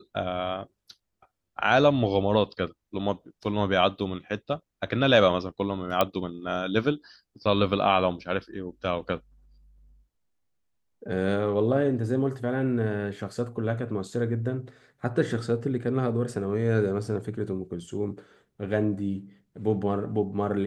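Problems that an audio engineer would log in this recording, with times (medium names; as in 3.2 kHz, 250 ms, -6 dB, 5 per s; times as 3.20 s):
6.01 s: pop -8 dBFS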